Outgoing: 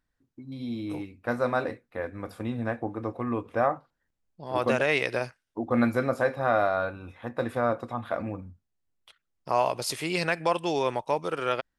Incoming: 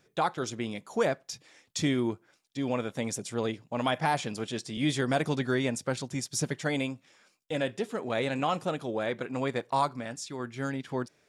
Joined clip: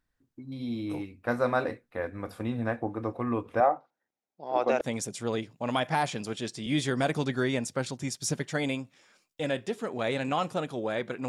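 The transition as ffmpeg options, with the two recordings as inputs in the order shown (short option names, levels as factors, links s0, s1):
-filter_complex "[0:a]asettb=1/sr,asplit=3[s0][s1][s2];[s0]atrim=end=3.604[s3];[s1]atrim=start=3.6:end=4.81,asetpts=PTS-STARTPTS,afade=t=in:d=0.004:c=qsin,afade=t=out:st=1.206:d=0.004:c=qsin,highpass=300,equalizer=f=770:t=q:w=4:g=6,equalizer=f=1100:t=q:w=4:g=-5,equalizer=f=1700:t=q:w=4:g=-6,equalizer=f=3000:t=q:w=4:g=-7,equalizer=f=4500:t=q:w=4:g=-8,lowpass=f=6100:w=0.5412,lowpass=f=6100:w=1.3066[s4];[s2]atrim=start=4.806[s5];[s3][s4]acrossfade=d=0.004:c1=hsin:c2=qsin[s6];[s6][s5]acrossfade=d=0.004:c1=qsin:c2=hsin,apad=whole_dur=11.28,atrim=end=11.28,atrim=end=4.812[s7];[1:a]atrim=start=2.918:end=9.39[s8];[s7][s8]acrossfade=d=0.004:c1=hsin:c2=hsin"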